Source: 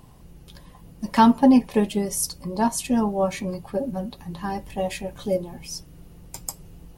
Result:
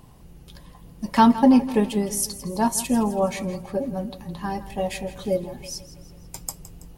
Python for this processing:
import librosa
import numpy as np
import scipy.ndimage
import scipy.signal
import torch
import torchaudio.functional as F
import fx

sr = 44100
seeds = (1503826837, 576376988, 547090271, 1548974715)

y = fx.high_shelf(x, sr, hz=10000.0, db=8.5, at=(2.49, 3.18))
y = fx.echo_feedback(y, sr, ms=164, feedback_pct=51, wet_db=-15.5)